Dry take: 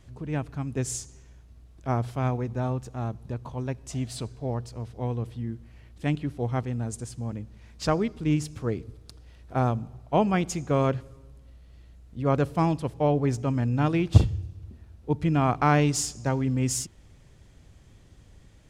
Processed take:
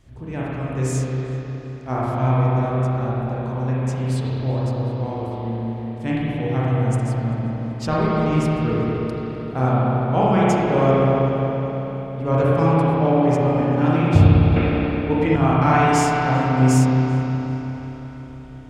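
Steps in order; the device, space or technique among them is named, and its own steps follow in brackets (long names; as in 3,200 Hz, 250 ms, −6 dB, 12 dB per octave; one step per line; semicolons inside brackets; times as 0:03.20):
dub delay into a spring reverb (feedback echo with a low-pass in the loop 386 ms, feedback 69%, low-pass 3,200 Hz, level −19 dB; spring reverb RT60 4 s, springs 31/52 ms, chirp 55 ms, DRR −8.5 dB)
0:14.56–0:15.36: graphic EQ with 10 bands 125 Hz −7 dB, 250 Hz +6 dB, 500 Hz +5 dB, 2,000 Hz +12 dB
level −1 dB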